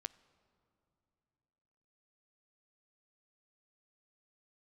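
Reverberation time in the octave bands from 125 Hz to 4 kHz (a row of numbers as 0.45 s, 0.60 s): 3.0 s, 3.1 s, 3.0 s, 2.8 s, 2.6 s, 2.2 s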